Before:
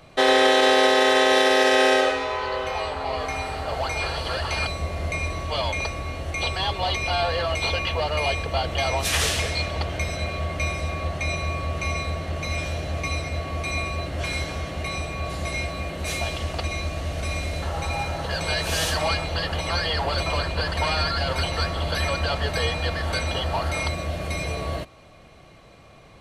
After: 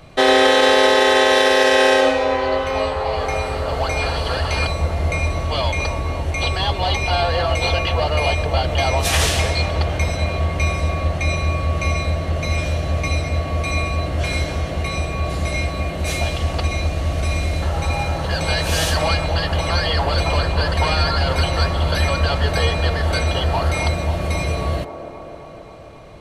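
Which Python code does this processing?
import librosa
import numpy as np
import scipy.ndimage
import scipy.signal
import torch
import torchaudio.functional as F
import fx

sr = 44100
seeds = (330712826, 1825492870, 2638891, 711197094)

p1 = fx.low_shelf(x, sr, hz=190.0, db=6.0)
p2 = p1 + fx.echo_wet_bandpass(p1, sr, ms=267, feedback_pct=72, hz=560.0, wet_db=-7, dry=0)
y = p2 * librosa.db_to_amplitude(3.5)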